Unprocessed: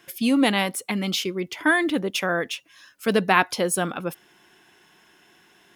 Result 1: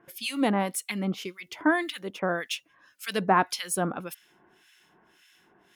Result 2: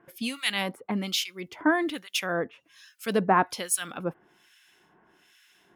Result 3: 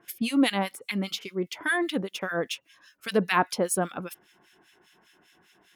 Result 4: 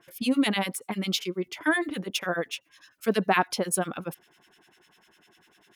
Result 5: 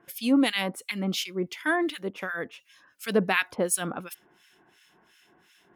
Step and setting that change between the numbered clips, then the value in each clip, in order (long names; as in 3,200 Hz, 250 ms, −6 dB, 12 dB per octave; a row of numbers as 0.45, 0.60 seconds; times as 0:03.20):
two-band tremolo in antiphase, speed: 1.8, 1.2, 5, 10, 2.8 Hertz